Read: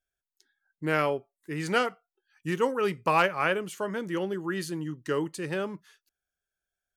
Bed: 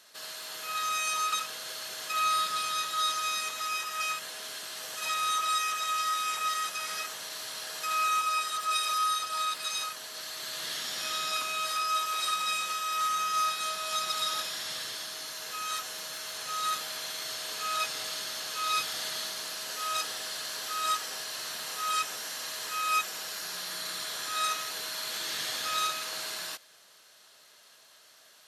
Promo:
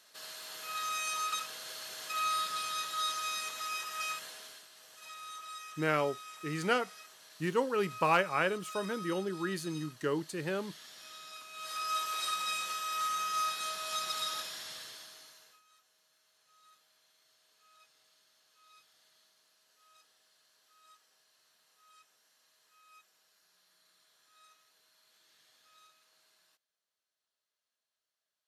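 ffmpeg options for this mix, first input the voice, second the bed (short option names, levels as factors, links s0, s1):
-filter_complex "[0:a]adelay=4950,volume=0.631[s0];[1:a]volume=2.37,afade=t=out:st=4.19:d=0.49:silence=0.251189,afade=t=in:st=11.51:d=0.42:silence=0.237137,afade=t=out:st=14.16:d=1.46:silence=0.0375837[s1];[s0][s1]amix=inputs=2:normalize=0"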